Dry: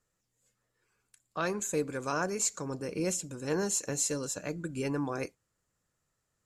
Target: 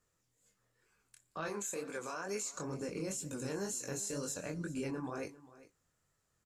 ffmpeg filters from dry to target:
-filter_complex "[0:a]asettb=1/sr,asplit=3[a][b][c];[a]atrim=end=1.484[d];[b]atrim=start=1.48:end=2.53,asetpts=PTS-STARTPTS,afade=t=in:d=0.004:c=qsin,afade=t=out:st=1.046:d=0.004:c=qsin,highpass=f=570:p=1[e];[c]atrim=start=2.526[f];[d][e]acrossfade=d=0.004:c1=hsin:c2=qsin[g];[g][f]acrossfade=d=0.004:c1=qsin:c2=hsin,asettb=1/sr,asplit=3[h][i][j];[h]atrim=end=3.164[k];[i]atrim=start=3.16:end=4.38,asetpts=PTS-STARTPTS,afade=t=in:d=0.004:c=qsin,afade=t=out:st=1.216:d=0.004:c=qsin,highshelf=f=7.3k:g=8.5[l];[j]atrim=start=4.376[m];[k][l]acrossfade=d=0.004:c1=hsin:c2=qsin[n];[n][m]acrossfade=d=0.004:c1=qsin:c2=hsin,alimiter=level_in=6dB:limit=-24dB:level=0:latency=1:release=67,volume=-6dB,acompressor=threshold=-36dB:ratio=6,flanger=delay=19:depth=6.7:speed=2.1,aecho=1:1:399:0.126,volume=4dB"

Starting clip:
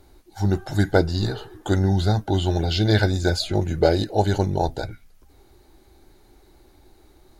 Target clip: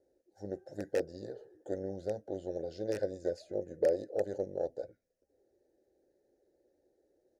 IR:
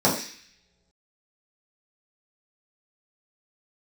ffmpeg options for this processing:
-filter_complex "[0:a]aeval=exprs='(mod(2.24*val(0)+1,2)-1)/2.24':c=same,firequalizer=gain_entry='entry(270,0);entry(2800,-25);entry(5500,2)':delay=0.05:min_phase=1,aeval=exprs='0.501*(cos(1*acos(clip(val(0)/0.501,-1,1)))-cos(1*PI/2))+0.126*(cos(2*acos(clip(val(0)/0.501,-1,1)))-cos(2*PI/2))+0.00708*(cos(6*acos(clip(val(0)/0.501,-1,1)))-cos(6*PI/2))':c=same,asplit=3[a][b][c];[a]bandpass=f=530:t=q:w=8,volume=0dB[d];[b]bandpass=f=1.84k:t=q:w=8,volume=-6dB[e];[c]bandpass=f=2.48k:t=q:w=8,volume=-9dB[f];[d][e][f]amix=inputs=3:normalize=0"

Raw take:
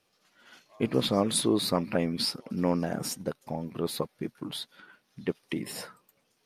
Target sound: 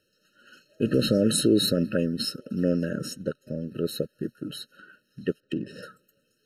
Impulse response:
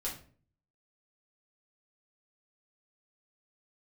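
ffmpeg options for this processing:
-filter_complex "[0:a]asplit=3[a][b][c];[a]afade=t=out:st=0.85:d=0.02[d];[b]acontrast=37,afade=t=in:st=0.85:d=0.02,afade=t=out:st=1.86:d=0.02[e];[c]afade=t=in:st=1.86:d=0.02[f];[d][e][f]amix=inputs=3:normalize=0,alimiter=limit=-14dB:level=0:latency=1:release=38,asettb=1/sr,asplit=3[g][h][i];[g]atrim=end=2.894[j];[h]atrim=start=2.89:end=3.71,asetpts=PTS-STARTPTS,afade=t=in:d=0.004:c=qsin,afade=t=out:st=0.816:d=0.004:c=qsin,highshelf=f=9.7k:g=-11[k];[i]atrim=start=3.706[l];[j][k]acrossfade=d=0.004:c1=hsin:c2=qsin[m];[m][l]acrossfade=d=0.004:c1=qsin:c2=hsin,asettb=1/sr,asplit=3[n][o][p];[n]atrim=end=5.404[q];[o]atrim=start=5.4:end=5.83,asetpts=PTS-STARTPTS,afade=t=in:d=0.004:c=qsin,afade=t=out:st=0.426:d=0.004:c=qsin,adynamicsmooth=sensitivity=3.5:basefreq=2.2k[r];[p]atrim=start=5.826[s];[q][r]acrossfade=d=0.004:c1=hsin:c2=qsin[t];[t][s]acrossfade=d=0.004:c1=qsin:c2=hsin,afftfilt=real='re*eq(mod(floor(b*sr/1024/630),2),0)':imag='im*eq(mod(floor(b*sr/1024/630),2),0)':win_size=1024:overlap=0.75,volume=3dB"

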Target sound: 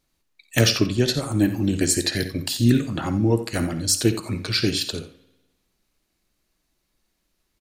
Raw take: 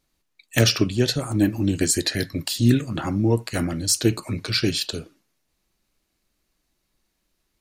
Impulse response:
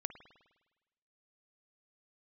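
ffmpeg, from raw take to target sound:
-filter_complex "[0:a]aecho=1:1:55|66:0.15|0.15,asplit=2[a][b];[1:a]atrim=start_sample=2205,adelay=87[c];[b][c]afir=irnorm=-1:irlink=0,volume=-12.5dB[d];[a][d]amix=inputs=2:normalize=0"

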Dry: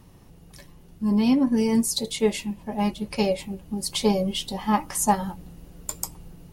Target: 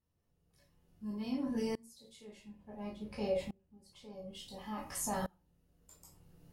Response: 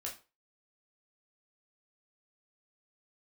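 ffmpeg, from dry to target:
-filter_complex "[0:a]asettb=1/sr,asplit=3[a][b][c];[a]atrim=end=2.274[d];[b]atrim=start=2.27:end=4.33,asetpts=PTS-STARTPTS,afade=t=in:d=0.004:c=qsin,afade=t=out:st=2.056:d=0.004:c=qsin,highshelf=f=3.1k:g=-10[e];[c]atrim=start=4.326[f];[d][e]acrossfade=d=0.004:c1=hsin:c2=qsin[g];[g][f]acrossfade=d=0.004:c1=qsin:c2=hsin,alimiter=limit=-19dB:level=0:latency=1:release=29[h];[1:a]atrim=start_sample=2205[i];[h][i]afir=irnorm=-1:irlink=0,aeval=exprs='val(0)*pow(10,-28*if(lt(mod(-0.57*n/s,1),2*abs(-0.57)/1000),1-mod(-0.57*n/s,1)/(2*abs(-0.57)/1000),(mod(-0.57*n/s,1)-2*abs(-0.57)/1000)/(1-2*abs(-0.57)/1000))/20)':c=same,volume=-3dB"

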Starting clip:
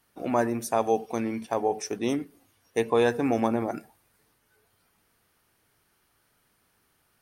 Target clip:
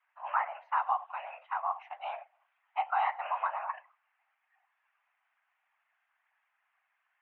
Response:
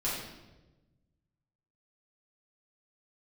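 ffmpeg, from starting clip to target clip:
-af "afftfilt=real='hypot(re,im)*cos(2*PI*random(0))':imag='hypot(re,im)*sin(2*PI*random(1))':win_size=512:overlap=0.75,highpass=f=450:t=q:w=0.5412,highpass=f=450:t=q:w=1.307,lowpass=f=2.4k:t=q:w=0.5176,lowpass=f=2.4k:t=q:w=0.7071,lowpass=f=2.4k:t=q:w=1.932,afreqshift=320,volume=1.5dB"

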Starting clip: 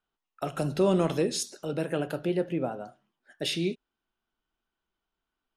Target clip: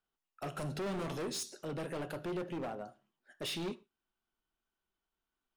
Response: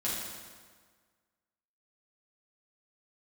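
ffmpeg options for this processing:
-filter_complex "[0:a]asoftclip=type=hard:threshold=-31dB,asplit=2[a][b];[1:a]atrim=start_sample=2205,afade=t=out:st=0.28:d=0.01,atrim=end_sample=12789,asetrate=79380,aresample=44100[c];[b][c]afir=irnorm=-1:irlink=0,volume=-17.5dB[d];[a][d]amix=inputs=2:normalize=0,volume=-5dB"

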